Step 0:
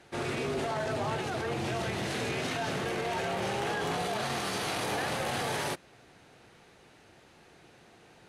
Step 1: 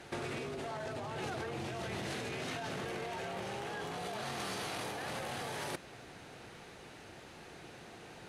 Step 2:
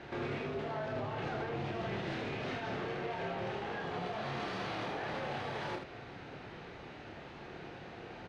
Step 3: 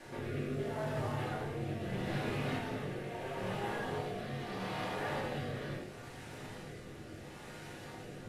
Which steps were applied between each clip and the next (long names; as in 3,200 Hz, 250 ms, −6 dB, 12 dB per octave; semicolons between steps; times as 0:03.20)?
compressor whose output falls as the input rises −39 dBFS, ratio −1; level −1 dB
soft clipping −36 dBFS, distortion −16 dB; high-frequency loss of the air 220 metres; on a send: ambience of single reflections 28 ms −4.5 dB, 80 ms −5.5 dB; on the sum: level +3 dB
linear delta modulator 64 kbit/s, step −47.5 dBFS; rotating-speaker cabinet horn 0.75 Hz; rectangular room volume 170 cubic metres, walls furnished, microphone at 2.5 metres; level −4 dB